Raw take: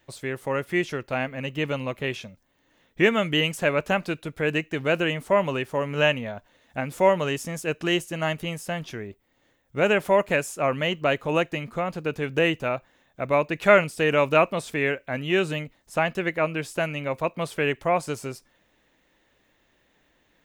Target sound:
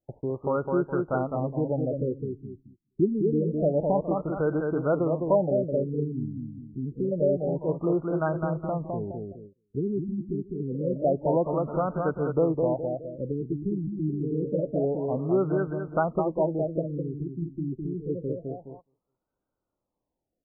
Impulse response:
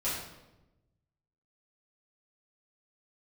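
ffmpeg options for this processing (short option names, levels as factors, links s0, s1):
-filter_complex "[0:a]lowpass=f=2200:p=1,aecho=1:1:208|416|624|832:0.596|0.208|0.073|0.0255,agate=range=0.0794:threshold=0.00398:ratio=16:detection=peak,asplit=2[s0][s1];[s1]acompressor=threshold=0.0251:ratio=6,volume=0.891[s2];[s0][s2]amix=inputs=2:normalize=0,afftfilt=real='re*lt(b*sr/1024,380*pow(1600/380,0.5+0.5*sin(2*PI*0.27*pts/sr)))':imag='im*lt(b*sr/1024,380*pow(1600/380,0.5+0.5*sin(2*PI*0.27*pts/sr)))':win_size=1024:overlap=0.75,volume=0.794"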